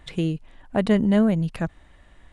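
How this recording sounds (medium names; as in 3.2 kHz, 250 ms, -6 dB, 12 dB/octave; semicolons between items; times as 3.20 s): noise floor -54 dBFS; spectral tilt -7.0 dB/octave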